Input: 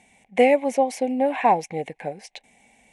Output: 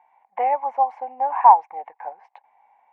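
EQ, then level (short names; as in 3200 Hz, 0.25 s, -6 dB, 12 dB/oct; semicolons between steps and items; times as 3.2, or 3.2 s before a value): resonant high-pass 900 Hz, resonance Q 4.9; synth low-pass 1200 Hz, resonance Q 2.4; -7.5 dB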